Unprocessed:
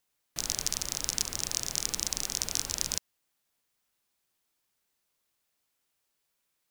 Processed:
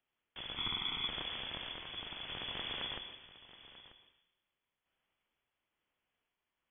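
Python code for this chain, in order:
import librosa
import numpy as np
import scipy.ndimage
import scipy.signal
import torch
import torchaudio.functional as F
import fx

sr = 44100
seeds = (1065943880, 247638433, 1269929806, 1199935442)

y = fx.comb(x, sr, ms=0.9, depth=0.91, at=(0.56, 1.08))
y = fx.rider(y, sr, range_db=4, speed_s=2.0)
y = fx.tremolo_random(y, sr, seeds[0], hz=3.5, depth_pct=55)
y = y + 10.0 ** (-16.0 / 20.0) * np.pad(y, (int(939 * sr / 1000.0), 0))[:len(y)]
y = fx.rev_plate(y, sr, seeds[1], rt60_s=1.0, hf_ratio=0.65, predelay_ms=100, drr_db=7.0)
y = fx.freq_invert(y, sr, carrier_hz=3400)
y = y * librosa.db_to_amplitude(1.0)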